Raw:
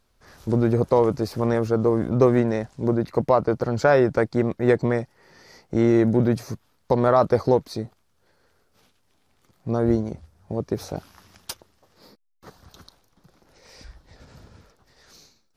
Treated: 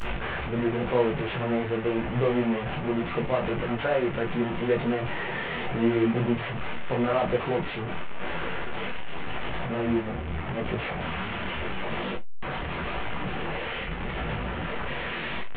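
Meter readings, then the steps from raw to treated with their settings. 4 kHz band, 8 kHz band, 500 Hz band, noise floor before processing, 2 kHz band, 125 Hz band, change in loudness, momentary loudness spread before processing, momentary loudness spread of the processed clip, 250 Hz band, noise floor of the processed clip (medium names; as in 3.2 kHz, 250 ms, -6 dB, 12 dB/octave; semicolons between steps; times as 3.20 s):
+6.5 dB, no reading, -6.0 dB, -66 dBFS, +4.0 dB, -5.5 dB, -7.0 dB, 19 LU, 9 LU, -4.5 dB, -33 dBFS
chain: one-bit delta coder 16 kbps, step -16.5 dBFS; gated-style reverb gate 80 ms falling, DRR 5.5 dB; detune thickener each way 29 cents; trim -5.5 dB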